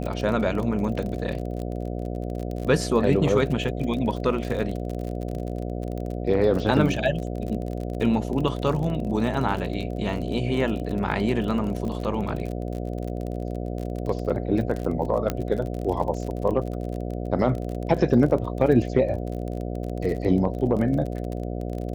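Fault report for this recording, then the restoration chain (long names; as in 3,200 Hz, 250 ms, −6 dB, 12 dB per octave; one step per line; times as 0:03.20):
mains buzz 60 Hz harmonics 12 −30 dBFS
surface crackle 36 per second −30 dBFS
0:15.30: click −11 dBFS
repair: click removal
hum removal 60 Hz, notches 12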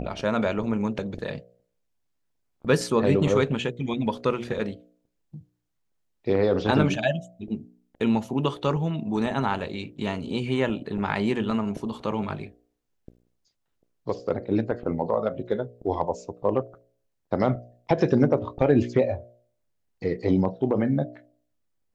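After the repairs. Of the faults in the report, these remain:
0:15.30: click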